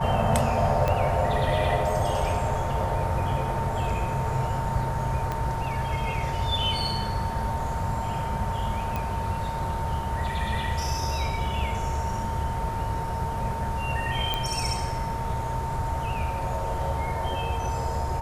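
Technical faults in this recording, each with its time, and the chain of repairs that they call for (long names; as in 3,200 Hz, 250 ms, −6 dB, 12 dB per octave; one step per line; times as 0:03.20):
whistle 910 Hz −31 dBFS
0:00.88: click −12 dBFS
0:05.32: click −16 dBFS
0:08.96: click
0:14.34: click −12 dBFS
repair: click removal
notch filter 910 Hz, Q 30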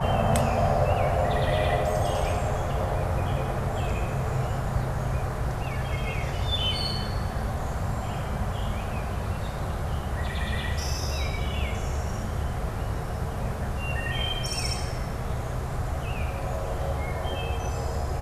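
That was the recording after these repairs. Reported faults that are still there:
0:00.88: click
0:05.32: click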